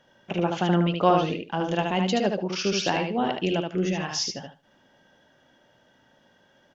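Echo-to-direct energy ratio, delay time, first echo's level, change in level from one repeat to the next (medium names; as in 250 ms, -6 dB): -4.0 dB, 75 ms, -4.0 dB, -15.0 dB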